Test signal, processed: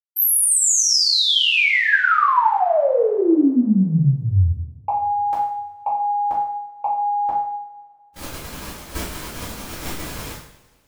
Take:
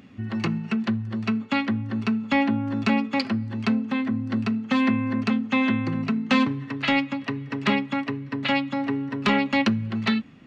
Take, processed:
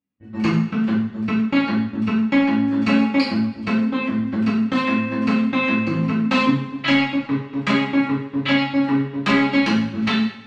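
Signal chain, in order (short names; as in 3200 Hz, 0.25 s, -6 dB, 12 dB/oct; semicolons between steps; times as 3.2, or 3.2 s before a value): de-hum 79.13 Hz, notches 3; gate -27 dBFS, range -45 dB; compressor 2:1, threshold -25 dBFS; two-slope reverb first 0.6 s, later 2.2 s, from -21 dB, DRR -8 dB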